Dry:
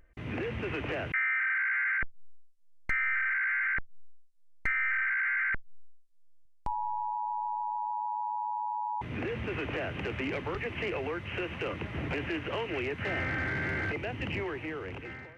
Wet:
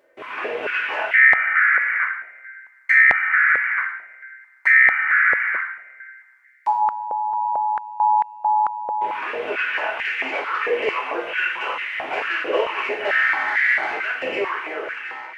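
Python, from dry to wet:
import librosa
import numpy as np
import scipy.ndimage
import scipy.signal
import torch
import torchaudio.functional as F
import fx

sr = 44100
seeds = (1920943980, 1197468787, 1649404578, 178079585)

y = fx.rev_double_slope(x, sr, seeds[0], early_s=0.64, late_s=2.1, knee_db=-20, drr_db=-7.5)
y = fx.filter_held_highpass(y, sr, hz=4.5, low_hz=520.0, high_hz=1900.0)
y = y * librosa.db_to_amplitude(1.0)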